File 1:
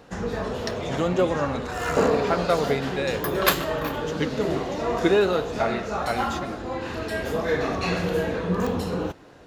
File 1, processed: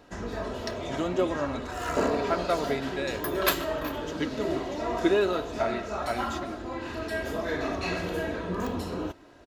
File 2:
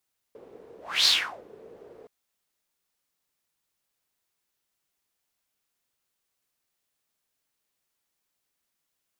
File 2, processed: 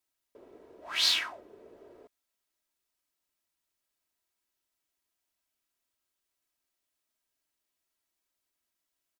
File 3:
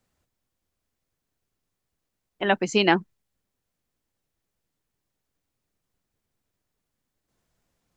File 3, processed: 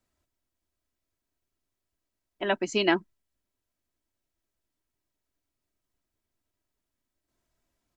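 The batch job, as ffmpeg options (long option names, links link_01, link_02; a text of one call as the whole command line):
ffmpeg -i in.wav -af "aecho=1:1:3.1:0.46,volume=-5dB" out.wav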